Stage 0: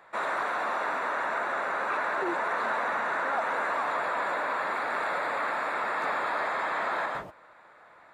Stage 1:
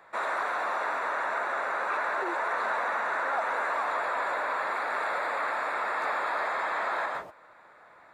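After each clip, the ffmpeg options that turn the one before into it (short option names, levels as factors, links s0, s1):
-filter_complex "[0:a]equalizer=f=3000:t=o:w=0.27:g=-4,acrossover=split=350[s0][s1];[s0]acompressor=threshold=0.00141:ratio=6[s2];[s2][s1]amix=inputs=2:normalize=0"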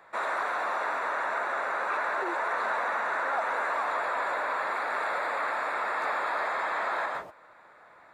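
-af anull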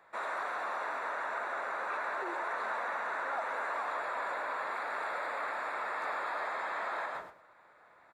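-af "aecho=1:1:106:0.251,volume=0.473"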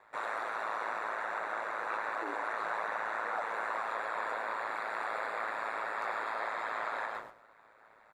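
-af "aeval=exprs='val(0)*sin(2*PI*55*n/s)':c=same,volume=1.41"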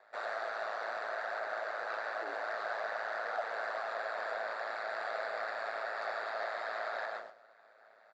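-filter_complex "[0:a]asplit=2[s0][s1];[s1]asoftclip=type=hard:threshold=0.0224,volume=0.631[s2];[s0][s2]amix=inputs=2:normalize=0,highpass=280,equalizer=f=310:t=q:w=4:g=-7,equalizer=f=660:t=q:w=4:g=9,equalizer=f=990:t=q:w=4:g=-9,equalizer=f=1600:t=q:w=4:g=3,equalizer=f=2300:t=q:w=4:g=-4,equalizer=f=4600:t=q:w=4:g=9,lowpass=f=6900:w=0.5412,lowpass=f=6900:w=1.3066,volume=0.501"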